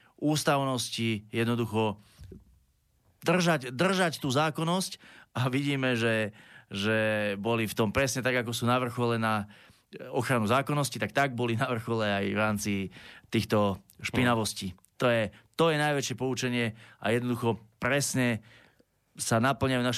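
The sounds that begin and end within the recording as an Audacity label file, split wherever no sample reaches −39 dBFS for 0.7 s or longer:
3.220000	18.380000	sound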